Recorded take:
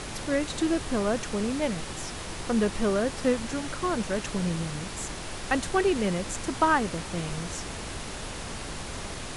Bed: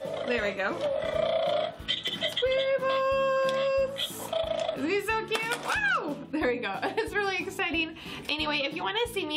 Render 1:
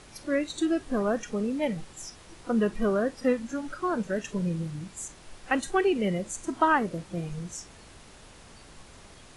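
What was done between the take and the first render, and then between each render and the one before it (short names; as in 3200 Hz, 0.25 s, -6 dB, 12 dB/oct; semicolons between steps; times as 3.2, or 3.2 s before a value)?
noise print and reduce 14 dB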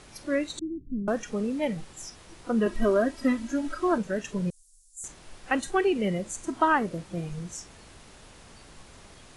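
0.59–1.08 inverse Chebyshev low-pass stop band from 700 Hz, stop band 50 dB; 2.66–3.98 comb 3.1 ms, depth 96%; 4.5–5.04 inverse Chebyshev band-stop 140–1400 Hz, stop band 80 dB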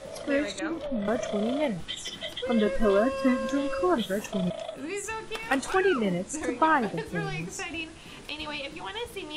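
add bed -6.5 dB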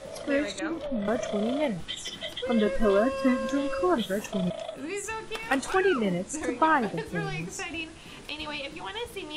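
nothing audible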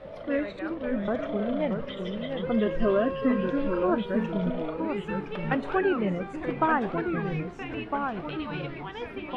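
echoes that change speed 0.496 s, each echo -2 st, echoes 3, each echo -6 dB; air absorption 410 m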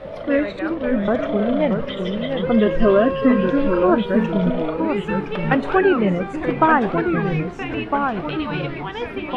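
gain +9 dB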